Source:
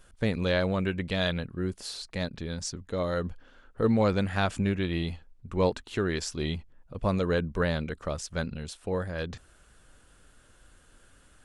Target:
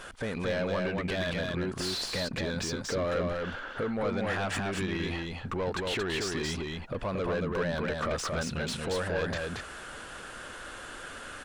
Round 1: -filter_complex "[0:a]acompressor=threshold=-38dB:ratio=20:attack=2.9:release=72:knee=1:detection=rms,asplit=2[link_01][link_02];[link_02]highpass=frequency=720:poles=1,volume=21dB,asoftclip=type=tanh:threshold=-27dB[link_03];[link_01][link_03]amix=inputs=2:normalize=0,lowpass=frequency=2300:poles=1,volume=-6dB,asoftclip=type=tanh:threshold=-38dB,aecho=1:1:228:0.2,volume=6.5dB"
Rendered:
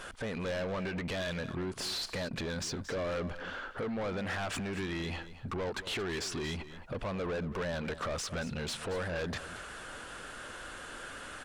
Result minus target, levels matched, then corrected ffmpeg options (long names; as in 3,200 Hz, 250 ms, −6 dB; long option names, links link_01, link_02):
soft clipping: distortion +16 dB; echo-to-direct −11 dB
-filter_complex "[0:a]acompressor=threshold=-38dB:ratio=20:attack=2.9:release=72:knee=1:detection=rms,asplit=2[link_01][link_02];[link_02]highpass=frequency=720:poles=1,volume=21dB,asoftclip=type=tanh:threshold=-27dB[link_03];[link_01][link_03]amix=inputs=2:normalize=0,lowpass=frequency=2300:poles=1,volume=-6dB,asoftclip=type=tanh:threshold=-27.5dB,aecho=1:1:228:0.708,volume=6.5dB"